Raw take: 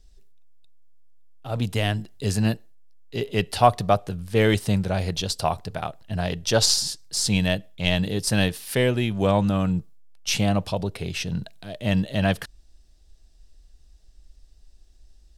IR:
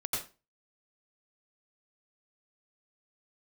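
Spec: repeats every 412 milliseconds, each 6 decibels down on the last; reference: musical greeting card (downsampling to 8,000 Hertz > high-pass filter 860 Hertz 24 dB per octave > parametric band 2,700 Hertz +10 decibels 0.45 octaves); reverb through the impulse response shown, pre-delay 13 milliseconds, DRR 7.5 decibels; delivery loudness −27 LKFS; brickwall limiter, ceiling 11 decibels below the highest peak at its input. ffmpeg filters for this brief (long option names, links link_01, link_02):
-filter_complex "[0:a]alimiter=limit=-14.5dB:level=0:latency=1,aecho=1:1:412|824|1236|1648|2060|2472:0.501|0.251|0.125|0.0626|0.0313|0.0157,asplit=2[link_01][link_02];[1:a]atrim=start_sample=2205,adelay=13[link_03];[link_02][link_03]afir=irnorm=-1:irlink=0,volume=-12dB[link_04];[link_01][link_04]amix=inputs=2:normalize=0,aresample=8000,aresample=44100,highpass=frequency=860:width=0.5412,highpass=frequency=860:width=1.3066,equalizer=frequency=2700:width_type=o:width=0.45:gain=10,volume=1.5dB"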